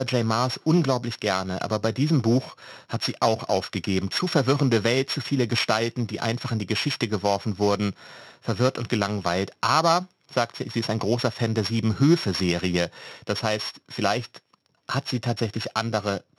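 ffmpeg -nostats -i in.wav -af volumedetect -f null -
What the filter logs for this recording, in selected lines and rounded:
mean_volume: -24.7 dB
max_volume: -5.6 dB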